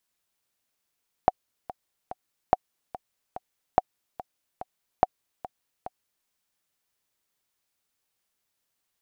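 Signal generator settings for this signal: metronome 144 bpm, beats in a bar 3, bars 4, 743 Hz, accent 17.5 dB -4.5 dBFS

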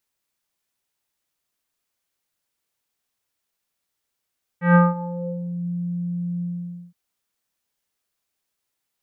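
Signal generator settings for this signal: synth note square F3 24 dB/octave, low-pass 250 Hz, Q 2.9, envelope 3 oct, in 1.05 s, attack 141 ms, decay 0.19 s, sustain -18 dB, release 0.51 s, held 1.81 s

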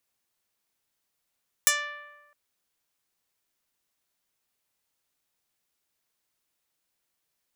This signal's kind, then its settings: plucked string D5, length 0.66 s, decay 1.30 s, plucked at 0.13, medium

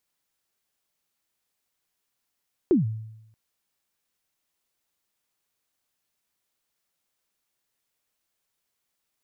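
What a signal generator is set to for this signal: kick drum length 0.63 s, from 400 Hz, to 110 Hz, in 140 ms, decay 0.87 s, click off, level -13.5 dB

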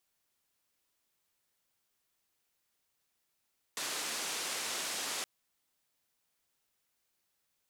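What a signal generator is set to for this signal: noise band 270–8300 Hz, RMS -37.5 dBFS 1.47 s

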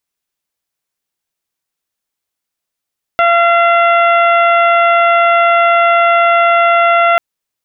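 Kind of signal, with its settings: steady additive tone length 3.99 s, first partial 684 Hz, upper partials -0.5/-6.5/-11/-18.5 dB, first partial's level -10 dB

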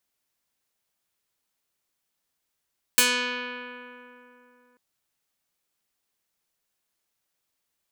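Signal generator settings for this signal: plucked string B3, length 1.79 s, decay 3.19 s, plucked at 0.37, medium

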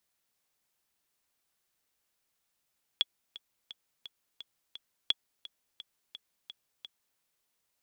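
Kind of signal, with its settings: metronome 172 bpm, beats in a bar 6, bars 2, 3.37 kHz, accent 18.5 dB -12 dBFS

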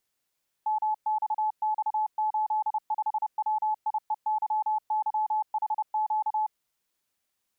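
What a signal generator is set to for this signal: Morse "MXX85WIEYYHQ" 30 wpm 860 Hz -23.5 dBFS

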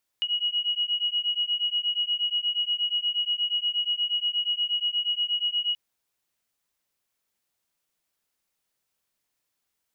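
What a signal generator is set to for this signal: beating tones 2.9 kHz, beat 8.4 Hz, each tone -27 dBFS 5.53 s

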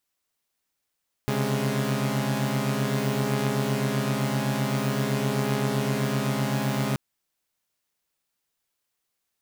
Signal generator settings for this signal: chord C3/C#3/G#3 saw, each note -25.5 dBFS 5.68 s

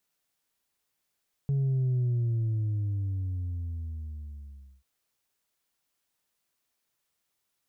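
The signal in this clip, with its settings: sub drop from 140 Hz, over 3.34 s, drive 2 dB, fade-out 2.84 s, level -24 dB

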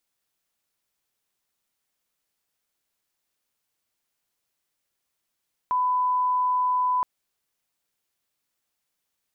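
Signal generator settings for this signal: line-up tone -20 dBFS 1.32 s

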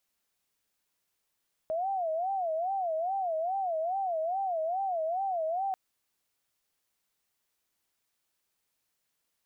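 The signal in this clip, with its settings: siren wail 631–788 Hz 2.4 per s sine -28 dBFS 4.04 s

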